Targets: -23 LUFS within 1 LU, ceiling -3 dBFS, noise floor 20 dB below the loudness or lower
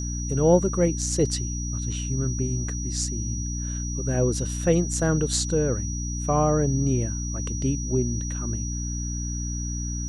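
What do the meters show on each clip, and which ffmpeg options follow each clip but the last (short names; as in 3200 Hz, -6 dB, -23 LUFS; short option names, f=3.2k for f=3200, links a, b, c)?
hum 60 Hz; harmonics up to 300 Hz; hum level -27 dBFS; steady tone 5800 Hz; tone level -34 dBFS; loudness -25.5 LUFS; peak -6.5 dBFS; loudness target -23.0 LUFS
-> -af "bandreject=f=60:t=h:w=6,bandreject=f=120:t=h:w=6,bandreject=f=180:t=h:w=6,bandreject=f=240:t=h:w=6,bandreject=f=300:t=h:w=6"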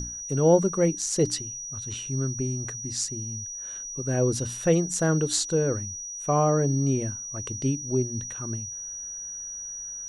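hum none; steady tone 5800 Hz; tone level -34 dBFS
-> -af "bandreject=f=5.8k:w=30"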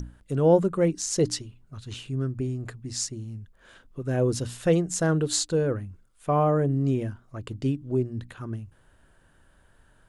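steady tone none; loudness -26.5 LUFS; peak -8.0 dBFS; loudness target -23.0 LUFS
-> -af "volume=3.5dB"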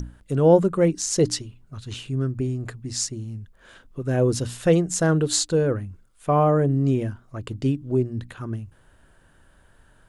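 loudness -23.0 LUFS; peak -4.5 dBFS; noise floor -57 dBFS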